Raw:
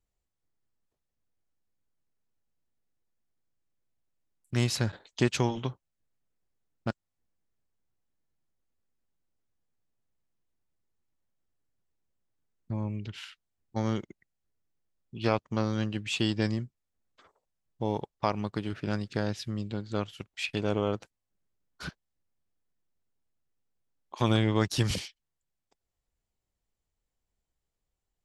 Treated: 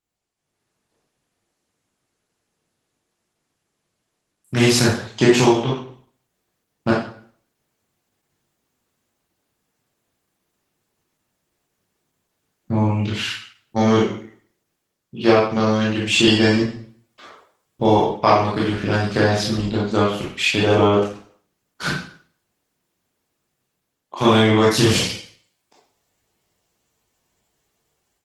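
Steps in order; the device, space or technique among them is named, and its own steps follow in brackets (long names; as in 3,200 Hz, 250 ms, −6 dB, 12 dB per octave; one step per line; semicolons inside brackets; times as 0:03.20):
0:18.60–0:19.14: noise gate with hold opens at −43 dBFS
far-field microphone of a smart speaker (convolution reverb RT60 0.50 s, pre-delay 19 ms, DRR −6.5 dB; high-pass filter 120 Hz 12 dB per octave; automatic gain control gain up to 12.5 dB; Opus 16 kbit/s 48,000 Hz)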